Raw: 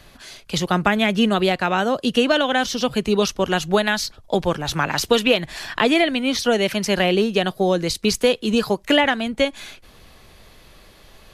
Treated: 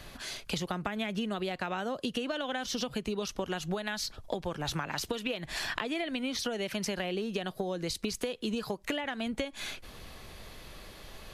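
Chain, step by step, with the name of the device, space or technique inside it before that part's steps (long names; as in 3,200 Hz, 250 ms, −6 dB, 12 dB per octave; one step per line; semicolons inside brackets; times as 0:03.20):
serial compression, peaks first (downward compressor, threshold −24 dBFS, peak gain reduction 12.5 dB; downward compressor 3 to 1, threshold −32 dBFS, peak gain reduction 9 dB)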